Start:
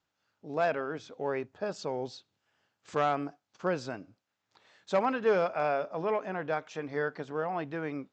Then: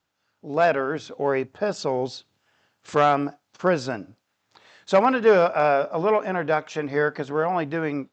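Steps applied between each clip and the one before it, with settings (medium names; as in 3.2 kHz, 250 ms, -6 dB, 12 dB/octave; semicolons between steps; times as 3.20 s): level rider gain up to 5 dB; trim +4.5 dB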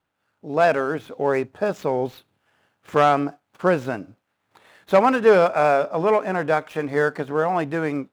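median filter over 9 samples; trim +2 dB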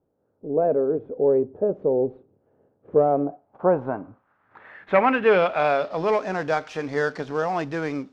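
companding laws mixed up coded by mu; low-pass sweep 460 Hz -> 5.6 kHz, 2.92–6.24 s; on a send at -20.5 dB: reverberation RT60 0.45 s, pre-delay 4 ms; on the sum: trim -4 dB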